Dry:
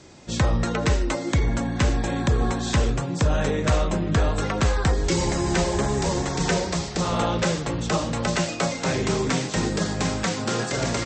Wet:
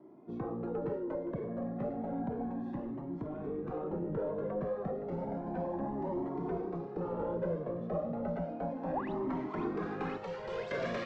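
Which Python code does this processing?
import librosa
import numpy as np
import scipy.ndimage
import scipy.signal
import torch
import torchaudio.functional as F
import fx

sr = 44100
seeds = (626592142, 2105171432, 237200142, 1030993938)

y = scipy.signal.sosfilt(scipy.signal.butter(4, 200.0, 'highpass', fs=sr, output='sos'), x)
y = fx.spec_paint(y, sr, seeds[0], shape='rise', start_s=8.93, length_s=0.2, low_hz=510.0, high_hz=4400.0, level_db=-23.0)
y = scipy.signal.sosfilt(scipy.signal.butter(2, 7300.0, 'lowpass', fs=sr, output='sos'), y)
y = fx.tilt_eq(y, sr, slope=-1.5)
y = 10.0 ** (-22.0 / 20.0) * np.tanh(y / 10.0 ** (-22.0 / 20.0))
y = fx.peak_eq(y, sr, hz=720.0, db=-5.5, octaves=2.3, at=(2.42, 3.71))
y = fx.fixed_phaser(y, sr, hz=650.0, stages=4, at=(10.17, 10.71))
y = fx.echo_wet_highpass(y, sr, ms=519, feedback_pct=70, hz=1400.0, wet_db=-9.5)
y = fx.filter_sweep_lowpass(y, sr, from_hz=660.0, to_hz=2800.0, start_s=8.74, end_s=10.9, q=0.94)
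y = fx.comb_cascade(y, sr, direction='rising', hz=0.32)
y = F.gain(torch.from_numpy(y), -2.5).numpy()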